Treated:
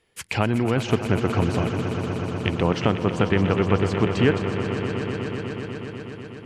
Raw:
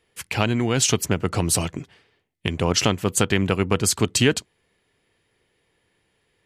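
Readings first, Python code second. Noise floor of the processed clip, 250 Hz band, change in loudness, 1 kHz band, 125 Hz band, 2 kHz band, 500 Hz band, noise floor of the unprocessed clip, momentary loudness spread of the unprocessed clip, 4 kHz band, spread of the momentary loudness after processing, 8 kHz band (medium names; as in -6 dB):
-40 dBFS, +2.0 dB, -2.0 dB, +1.5 dB, +2.0 dB, -1.0 dB, +2.0 dB, -70 dBFS, 10 LU, -7.5 dB, 11 LU, -19.5 dB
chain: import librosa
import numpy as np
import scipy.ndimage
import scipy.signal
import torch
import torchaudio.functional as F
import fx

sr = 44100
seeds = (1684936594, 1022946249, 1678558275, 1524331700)

y = fx.env_lowpass_down(x, sr, base_hz=1900.0, full_db=-19.5)
y = fx.echo_swell(y, sr, ms=123, loudest=5, wet_db=-12)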